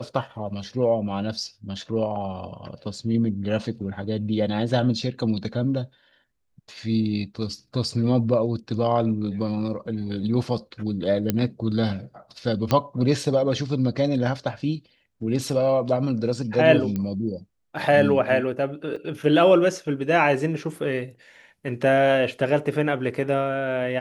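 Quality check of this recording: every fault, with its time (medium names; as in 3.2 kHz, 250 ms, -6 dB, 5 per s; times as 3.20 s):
11.30 s: pop -8 dBFS
12.71 s: pop -8 dBFS
16.96 s: pop -16 dBFS
18.96 s: dropout 5 ms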